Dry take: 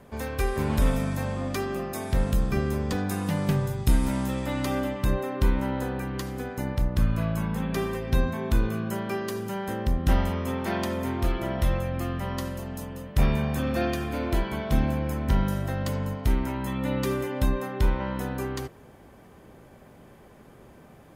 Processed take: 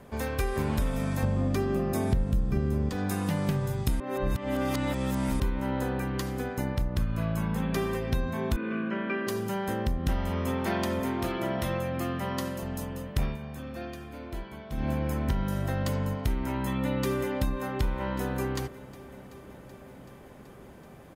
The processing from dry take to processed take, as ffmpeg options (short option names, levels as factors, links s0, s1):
-filter_complex "[0:a]asettb=1/sr,asplit=3[s0][s1][s2];[s0]atrim=end=1.234[s3];[s1]atrim=start=1.23:end=2.89,asetpts=PTS-STARTPTS,afade=t=in:d=0.004:c=qsin,afade=t=out:st=1.656:d=0.004:c=qsin,lowshelf=f=470:g=11.5[s4];[s2]atrim=start=2.886[s5];[s3][s4]acrossfade=d=0.004:c1=hsin:c2=qsin[s6];[s6][s5]acrossfade=d=0.004:c1=qsin:c2=hsin,asettb=1/sr,asplit=3[s7][s8][s9];[s7]atrim=end=8.564[s10];[s8]atrim=start=8.56:end=9.27,asetpts=PTS-STARTPTS,afade=t=in:d=0.004:c=qsin,afade=t=out:st=0.706:d=0.004:c=qsin,highpass=f=200:w=0.5412,highpass=f=200:w=1.3066,equalizer=f=280:t=q:w=4:g=8,equalizer=f=400:t=q:w=4:g=-4,equalizer=f=790:t=q:w=4:g=-10,equalizer=f=1600:t=q:w=4:g=4,equalizer=f=2400:t=q:w=4:g=5,lowpass=f=3000:w=0.5412,lowpass=f=3000:w=1.3066[s11];[s9]atrim=start=9.266[s12];[s10][s11]acrossfade=d=0.004:c1=hsin:c2=qsin[s13];[s13][s12]acrossfade=d=0.004:c1=qsin:c2=hsin,asettb=1/sr,asplit=3[s14][s15][s16];[s14]atrim=end=11.004[s17];[s15]atrim=start=11:end=12.63,asetpts=PTS-STARTPTS,afade=t=in:d=0.004:c=qsin,afade=t=out:st=1.626:d=0.004:c=qsin,highpass=130[s18];[s16]atrim=start=12.626[s19];[s17][s18]acrossfade=d=0.004:c1=hsin:c2=qsin[s20];[s20][s19]acrossfade=d=0.004:c1=qsin:c2=hsin,asplit=2[s21][s22];[s22]afade=t=in:st=16.79:d=0.01,afade=t=out:st=17.31:d=0.01,aecho=0:1:380|760|1140|1520|1900|2280|2660|3040|3420|3800|4180|4560:0.188365|0.150692|0.120554|0.0964428|0.0771543|0.0617234|0.0493787|0.039503|0.0316024|0.0252819|0.0202255|0.0161804[s23];[s21][s23]amix=inputs=2:normalize=0,asplit=5[s24][s25][s26][s27][s28];[s24]atrim=end=4.002[s29];[s25]atrim=start=3.998:end=5.402,asetpts=PTS-STARTPTS,areverse[s30];[s26]atrim=start=5.398:end=13.38,asetpts=PTS-STARTPTS,afade=t=out:st=7.832:d=0.15:silence=0.223872[s31];[s27]atrim=start=13.38:end=14.77,asetpts=PTS-STARTPTS,volume=0.224[s32];[s28]atrim=start=14.77,asetpts=PTS-STARTPTS,afade=t=in:d=0.15:silence=0.223872[s33];[s29][s30]acrossfade=d=0.004:c1=hsin:c2=hsin[s34];[s31][s32][s33]concat=n=3:v=0:a=1[s35];[s34][s35]acrossfade=d=0.004:c1=hsin:c2=hsin,acompressor=threshold=0.0562:ratio=5,volume=1.12"